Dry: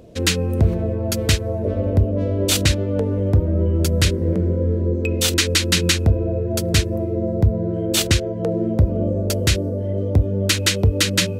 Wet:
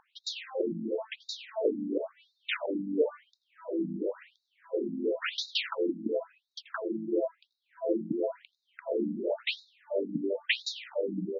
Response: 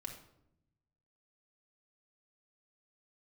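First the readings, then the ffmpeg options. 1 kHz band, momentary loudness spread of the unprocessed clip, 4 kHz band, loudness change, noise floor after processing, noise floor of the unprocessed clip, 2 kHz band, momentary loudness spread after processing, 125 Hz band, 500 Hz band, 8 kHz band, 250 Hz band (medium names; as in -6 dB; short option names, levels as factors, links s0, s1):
-9.5 dB, 5 LU, -15.0 dB, -13.5 dB, -81 dBFS, -25 dBFS, -11.5 dB, 9 LU, -31.5 dB, -8.5 dB, -29.0 dB, -11.5 dB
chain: -filter_complex "[0:a]acrossover=split=260 3000:gain=0.141 1 0.0631[s0][s1][s2];[s0][s1][s2]amix=inputs=3:normalize=0,asplit=2[s3][s4];[s4]adelay=99,lowpass=f=2600:p=1,volume=0.178,asplit=2[s5][s6];[s6]adelay=99,lowpass=f=2600:p=1,volume=0.35,asplit=2[s7][s8];[s8]adelay=99,lowpass=f=2600:p=1,volume=0.35[s9];[s3][s5][s7][s9]amix=inputs=4:normalize=0,asplit=2[s10][s11];[1:a]atrim=start_sample=2205,lowpass=3700,adelay=83[s12];[s11][s12]afir=irnorm=-1:irlink=0,volume=0.299[s13];[s10][s13]amix=inputs=2:normalize=0,afftfilt=real='re*between(b*sr/1024,220*pow(5200/220,0.5+0.5*sin(2*PI*0.96*pts/sr))/1.41,220*pow(5200/220,0.5+0.5*sin(2*PI*0.96*pts/sr))*1.41)':imag='im*between(b*sr/1024,220*pow(5200/220,0.5+0.5*sin(2*PI*0.96*pts/sr))/1.41,220*pow(5200/220,0.5+0.5*sin(2*PI*0.96*pts/sr))*1.41)':win_size=1024:overlap=0.75"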